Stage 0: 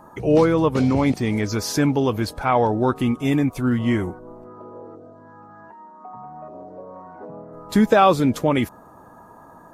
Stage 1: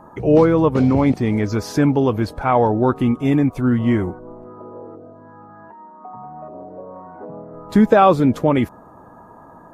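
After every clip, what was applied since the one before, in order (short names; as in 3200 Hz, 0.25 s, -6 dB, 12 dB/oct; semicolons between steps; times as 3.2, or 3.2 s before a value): high shelf 2600 Hz -11.5 dB; gain +3.5 dB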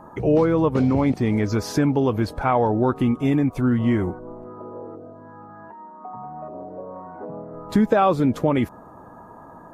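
compressor 2:1, threshold -18 dBFS, peak gain reduction 6 dB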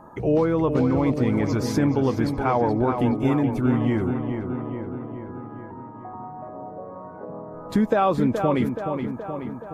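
darkening echo 0.424 s, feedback 63%, low-pass 3200 Hz, level -6.5 dB; gain -2.5 dB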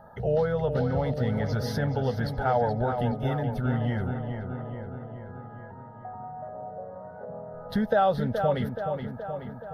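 fixed phaser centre 1600 Hz, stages 8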